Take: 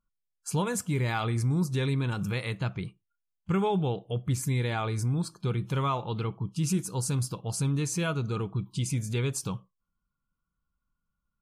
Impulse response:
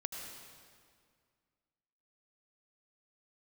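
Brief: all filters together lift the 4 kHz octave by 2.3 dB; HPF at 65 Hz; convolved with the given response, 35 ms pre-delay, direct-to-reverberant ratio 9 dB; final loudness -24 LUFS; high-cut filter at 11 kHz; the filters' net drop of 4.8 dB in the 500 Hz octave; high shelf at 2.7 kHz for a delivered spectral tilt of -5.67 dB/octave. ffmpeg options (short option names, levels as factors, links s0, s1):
-filter_complex "[0:a]highpass=65,lowpass=11000,equalizer=f=500:t=o:g=-6,highshelf=f=2700:g=-7,equalizer=f=4000:t=o:g=8.5,asplit=2[s0][s1];[1:a]atrim=start_sample=2205,adelay=35[s2];[s1][s2]afir=irnorm=-1:irlink=0,volume=0.355[s3];[s0][s3]amix=inputs=2:normalize=0,volume=2.11"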